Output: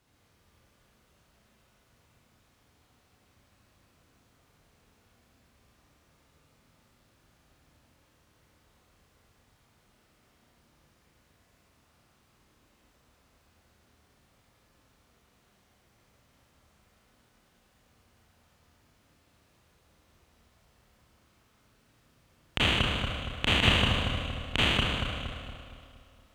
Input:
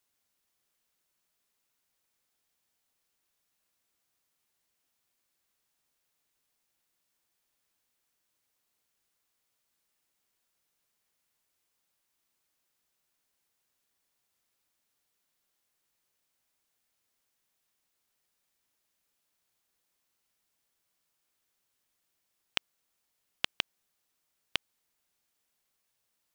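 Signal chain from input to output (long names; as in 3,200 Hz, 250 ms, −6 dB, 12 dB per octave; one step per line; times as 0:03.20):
high-pass filter 54 Hz
RIAA equalisation playback
soft clipping −9.5 dBFS, distortion −18 dB
on a send: bucket-brigade delay 233 ms, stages 2,048, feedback 50%, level −6 dB
on the sum: four-comb reverb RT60 2.1 s, combs from 26 ms, DRR −4 dB
boost into a limiter +20.5 dB
level −7 dB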